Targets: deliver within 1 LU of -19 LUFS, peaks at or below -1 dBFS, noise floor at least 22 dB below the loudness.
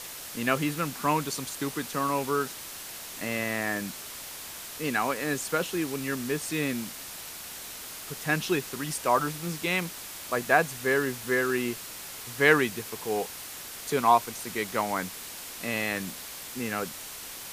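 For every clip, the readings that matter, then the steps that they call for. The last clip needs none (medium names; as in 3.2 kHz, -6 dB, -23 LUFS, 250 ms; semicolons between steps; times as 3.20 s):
noise floor -41 dBFS; noise floor target -52 dBFS; loudness -29.5 LUFS; peak level -6.5 dBFS; loudness target -19.0 LUFS
-> noise reduction 11 dB, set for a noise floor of -41 dBFS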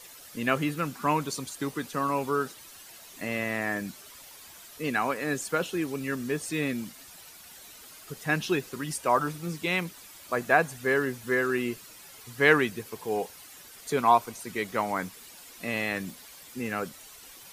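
noise floor -49 dBFS; noise floor target -51 dBFS
-> noise reduction 6 dB, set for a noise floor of -49 dBFS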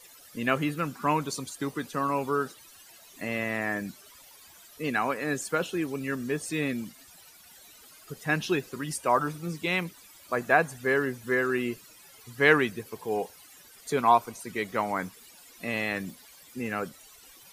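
noise floor -53 dBFS; loudness -29.0 LUFS; peak level -6.5 dBFS; loudness target -19.0 LUFS
-> trim +10 dB; peak limiter -1 dBFS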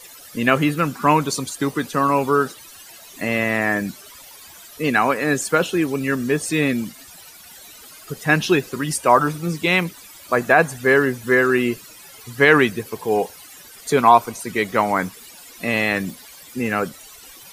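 loudness -19.5 LUFS; peak level -1.0 dBFS; noise floor -43 dBFS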